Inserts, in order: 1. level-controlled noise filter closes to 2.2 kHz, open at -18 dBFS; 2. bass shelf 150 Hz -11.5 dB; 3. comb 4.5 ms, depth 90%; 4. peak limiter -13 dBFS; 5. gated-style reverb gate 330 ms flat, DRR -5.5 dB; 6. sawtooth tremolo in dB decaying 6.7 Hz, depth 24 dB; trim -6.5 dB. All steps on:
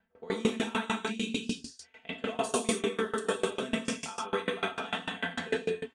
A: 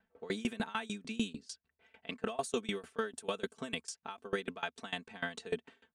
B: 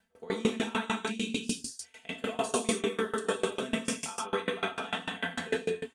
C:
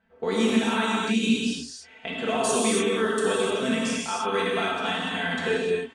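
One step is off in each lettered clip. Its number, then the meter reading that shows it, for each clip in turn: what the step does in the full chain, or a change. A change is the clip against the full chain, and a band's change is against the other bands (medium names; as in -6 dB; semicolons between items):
5, momentary loudness spread change +1 LU; 1, 8 kHz band +2.5 dB; 6, crest factor change -5.0 dB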